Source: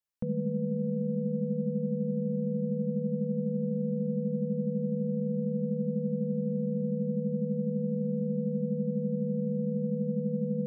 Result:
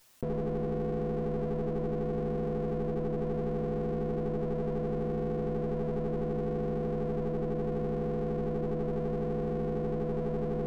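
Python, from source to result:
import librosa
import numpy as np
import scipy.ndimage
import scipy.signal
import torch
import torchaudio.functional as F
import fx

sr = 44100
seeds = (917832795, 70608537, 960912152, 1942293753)

y = fx.lower_of_two(x, sr, delay_ms=7.8)
y = fx.env_flatten(y, sr, amount_pct=50)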